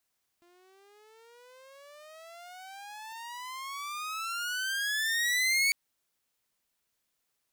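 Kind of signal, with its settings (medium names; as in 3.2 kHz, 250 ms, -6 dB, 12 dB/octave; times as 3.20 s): gliding synth tone saw, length 5.30 s, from 344 Hz, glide +32.5 st, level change +37.5 dB, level -20 dB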